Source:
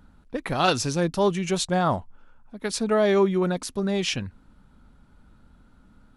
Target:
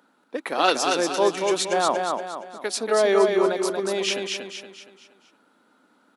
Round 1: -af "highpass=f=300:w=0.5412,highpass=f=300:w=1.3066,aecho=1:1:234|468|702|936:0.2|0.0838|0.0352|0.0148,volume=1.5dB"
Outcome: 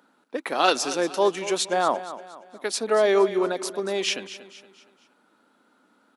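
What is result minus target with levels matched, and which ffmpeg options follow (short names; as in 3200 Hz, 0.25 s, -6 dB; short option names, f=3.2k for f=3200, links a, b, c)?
echo-to-direct -10 dB
-af "highpass=f=300:w=0.5412,highpass=f=300:w=1.3066,aecho=1:1:234|468|702|936|1170:0.631|0.265|0.111|0.0467|0.0196,volume=1.5dB"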